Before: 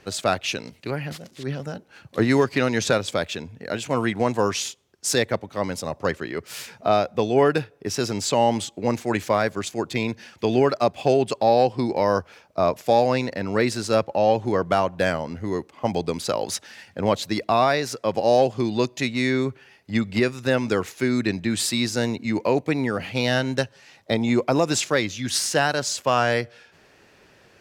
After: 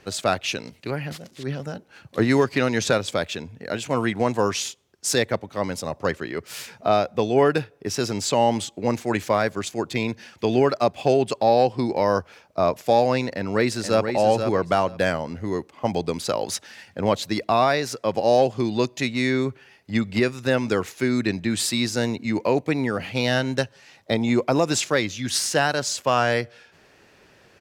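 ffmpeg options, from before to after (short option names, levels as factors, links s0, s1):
-filter_complex "[0:a]asplit=2[s0][s1];[s1]afade=t=in:st=13.31:d=0.01,afade=t=out:st=14.11:d=0.01,aecho=0:1:480|960|1440:0.446684|0.0670025|0.0100504[s2];[s0][s2]amix=inputs=2:normalize=0"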